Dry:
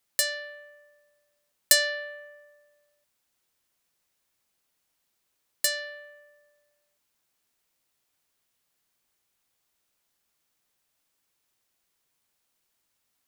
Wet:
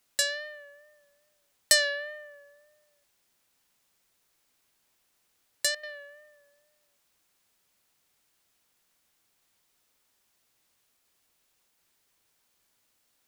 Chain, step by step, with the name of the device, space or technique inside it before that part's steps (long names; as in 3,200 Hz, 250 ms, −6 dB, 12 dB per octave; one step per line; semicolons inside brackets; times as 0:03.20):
worn cassette (low-pass filter 9,700 Hz 12 dB per octave; tape wow and flutter; tape dropouts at 0:05.75/0:10.97/0:11.69, 81 ms −10 dB; white noise bed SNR 35 dB)